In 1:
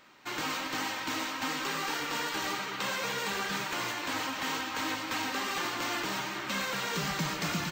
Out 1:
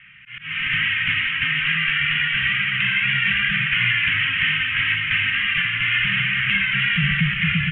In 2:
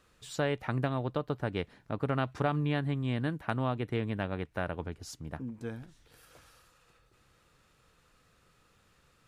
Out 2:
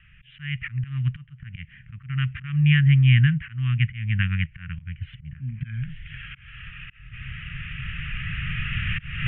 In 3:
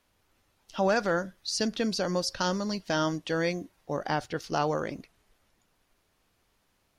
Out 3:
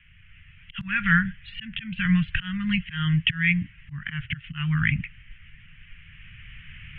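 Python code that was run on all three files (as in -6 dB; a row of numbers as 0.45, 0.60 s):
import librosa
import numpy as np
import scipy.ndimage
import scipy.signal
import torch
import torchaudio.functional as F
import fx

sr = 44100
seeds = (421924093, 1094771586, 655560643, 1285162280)

y = fx.recorder_agc(x, sr, target_db=-19.5, rise_db_per_s=6.5, max_gain_db=30)
y = fx.wow_flutter(y, sr, seeds[0], rate_hz=2.1, depth_cents=28.0)
y = scipy.signal.sosfilt(scipy.signal.butter(16, 3100.0, 'lowpass', fs=sr, output='sos'), y)
y = fx.auto_swell(y, sr, attack_ms=326.0)
y = scipy.signal.sosfilt(scipy.signal.ellip(3, 1.0, 60, [150.0, 1900.0], 'bandstop', fs=sr, output='sos'), y)
y = y * 10.0 ** (-6 / 20.0) / np.max(np.abs(y))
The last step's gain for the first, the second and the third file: +16.5, +16.5, +21.0 dB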